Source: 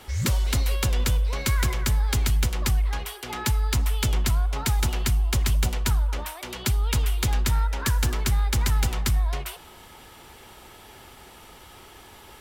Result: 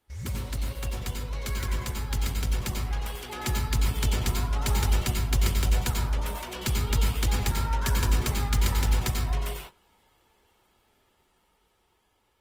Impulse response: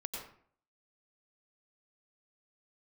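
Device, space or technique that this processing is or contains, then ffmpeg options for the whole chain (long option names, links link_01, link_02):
speakerphone in a meeting room: -filter_complex "[1:a]atrim=start_sample=2205[link_01];[0:a][link_01]afir=irnorm=-1:irlink=0,dynaudnorm=framelen=810:gausssize=7:maxgain=7dB,agate=range=-16dB:threshold=-34dB:ratio=16:detection=peak,volume=-7.5dB" -ar 48000 -c:a libopus -b:a 24k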